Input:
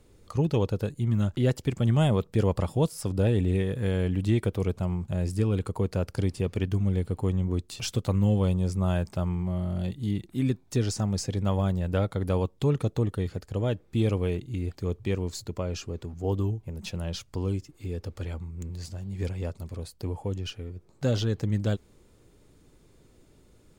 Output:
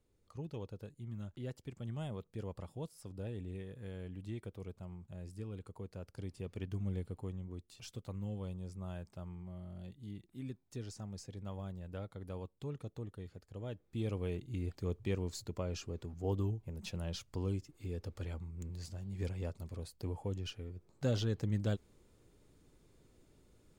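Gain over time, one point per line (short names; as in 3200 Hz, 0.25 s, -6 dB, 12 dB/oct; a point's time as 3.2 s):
6 s -19 dB
6.92 s -11.5 dB
7.47 s -18 dB
13.46 s -18 dB
14.57 s -7.5 dB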